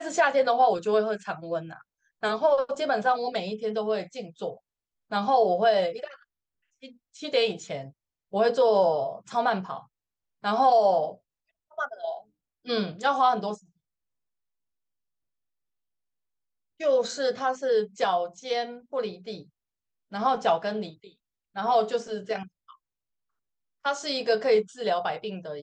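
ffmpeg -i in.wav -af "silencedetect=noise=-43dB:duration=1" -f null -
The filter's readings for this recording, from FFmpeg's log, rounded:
silence_start: 13.56
silence_end: 16.80 | silence_duration: 3.24
silence_start: 22.71
silence_end: 23.85 | silence_duration: 1.14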